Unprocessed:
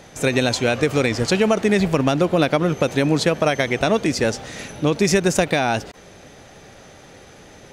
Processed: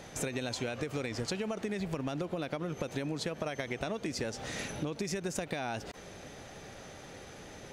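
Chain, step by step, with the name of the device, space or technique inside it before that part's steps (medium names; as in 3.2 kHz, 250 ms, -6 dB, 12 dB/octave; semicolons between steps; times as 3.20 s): serial compression, peaks first (compression, threshold -23 dBFS, peak gain reduction 10.5 dB; compression 2.5:1, threshold -30 dBFS, peak gain reduction 6.5 dB); trim -4 dB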